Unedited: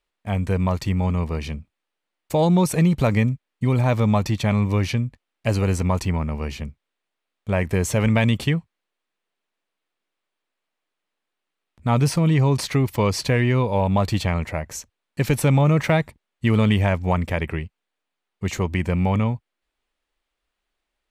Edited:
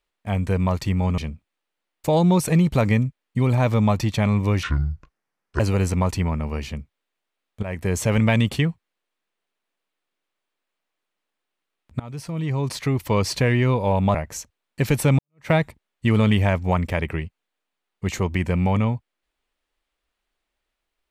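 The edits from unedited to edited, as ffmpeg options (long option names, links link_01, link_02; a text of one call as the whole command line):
ffmpeg -i in.wav -filter_complex "[0:a]asplit=8[link_01][link_02][link_03][link_04][link_05][link_06][link_07][link_08];[link_01]atrim=end=1.182[link_09];[link_02]atrim=start=1.438:end=4.894[link_10];[link_03]atrim=start=4.89:end=5.48,asetpts=PTS-STARTPTS,asetrate=26901,aresample=44100,atrim=end_sample=42654,asetpts=PTS-STARTPTS[link_11];[link_04]atrim=start=5.476:end=7.51,asetpts=PTS-STARTPTS,afade=type=out:start_time=2.03:duration=0.004:curve=hsin:silence=0.211349[link_12];[link_05]atrim=start=7.51:end=11.88,asetpts=PTS-STARTPTS,afade=type=in:duration=0.51:curve=qsin:silence=0.211349,afade=type=out:start_time=4.366:duration=0.004:curve=hsin:silence=0.0630957[link_13];[link_06]atrim=start=11.88:end=14.032,asetpts=PTS-STARTPTS,afade=type=in:duration=1.23:silence=0.0630957[link_14];[link_07]atrim=start=14.538:end=15.58,asetpts=PTS-STARTPTS,afade=type=out:start_time=1.038:duration=0.004:curve=hsin[link_15];[link_08]atrim=start=15.58,asetpts=PTS-STARTPTS,afade=type=in:duration=0.31:curve=exp[link_16];[link_09][link_10]acrossfade=duration=0.004:curve1=hsin:curve2=hsin[link_17];[link_17][link_11]acrossfade=duration=0.004:curve1=hsin:curve2=hsin[link_18];[link_12][link_13][link_14]concat=n=3:v=0:a=1[link_19];[link_18][link_19]acrossfade=duration=0.004:curve1=hsin:curve2=hsin[link_20];[link_15][link_16]concat=n=2:v=0:a=1[link_21];[link_20][link_21]acrossfade=duration=0.004:curve1=hsin:curve2=hsin" out.wav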